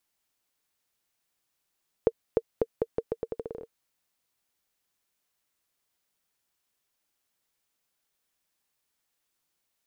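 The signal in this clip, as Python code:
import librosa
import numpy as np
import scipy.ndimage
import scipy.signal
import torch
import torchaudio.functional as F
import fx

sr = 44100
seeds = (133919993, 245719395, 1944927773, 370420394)

y = fx.bouncing_ball(sr, first_gap_s=0.3, ratio=0.82, hz=457.0, decay_ms=48.0, level_db=-9.0)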